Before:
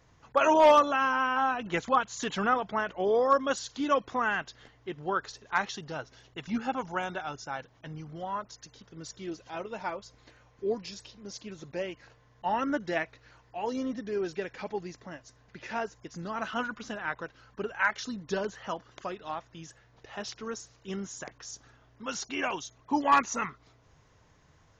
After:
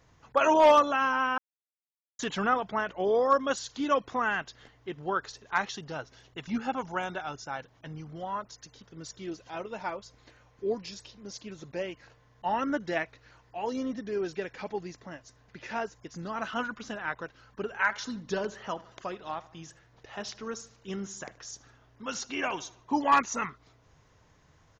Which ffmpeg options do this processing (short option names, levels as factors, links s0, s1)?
-filter_complex "[0:a]asplit=3[s0][s1][s2];[s0]afade=t=out:st=17.72:d=0.02[s3];[s1]asplit=2[s4][s5];[s5]adelay=76,lowpass=f=4900:p=1,volume=0.112,asplit=2[s6][s7];[s7]adelay=76,lowpass=f=4900:p=1,volume=0.5,asplit=2[s8][s9];[s9]adelay=76,lowpass=f=4900:p=1,volume=0.5,asplit=2[s10][s11];[s11]adelay=76,lowpass=f=4900:p=1,volume=0.5[s12];[s4][s6][s8][s10][s12]amix=inputs=5:normalize=0,afade=t=in:st=17.72:d=0.02,afade=t=out:st=23.04:d=0.02[s13];[s2]afade=t=in:st=23.04:d=0.02[s14];[s3][s13][s14]amix=inputs=3:normalize=0,asplit=3[s15][s16][s17];[s15]atrim=end=1.38,asetpts=PTS-STARTPTS,afade=t=out:st=1.376:d=0.004:c=hsin[s18];[s16]atrim=start=1.38:end=2.19,asetpts=PTS-STARTPTS,volume=0[s19];[s17]atrim=start=2.19,asetpts=PTS-STARTPTS,afade=t=in:d=0.004:c=hsin[s20];[s18][s19][s20]concat=n=3:v=0:a=1"